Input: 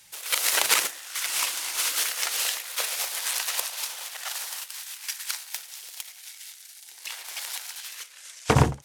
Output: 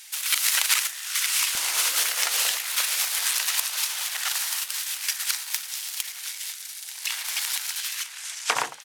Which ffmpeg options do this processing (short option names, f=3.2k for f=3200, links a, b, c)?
-filter_complex "[0:a]asetnsamples=n=441:p=0,asendcmd='1.55 highpass f 360;2.57 highpass f 1100',highpass=1.4k,acompressor=threshold=-34dB:ratio=2,asplit=2[a][b];[b]adelay=955,lowpass=f=2.3k:p=1,volume=-11.5dB,asplit=2[c][d];[d]adelay=955,lowpass=f=2.3k:p=1,volume=0.47,asplit=2[e][f];[f]adelay=955,lowpass=f=2.3k:p=1,volume=0.47,asplit=2[g][h];[h]adelay=955,lowpass=f=2.3k:p=1,volume=0.47,asplit=2[i][j];[j]adelay=955,lowpass=f=2.3k:p=1,volume=0.47[k];[a][c][e][g][i][k]amix=inputs=6:normalize=0,volume=9dB"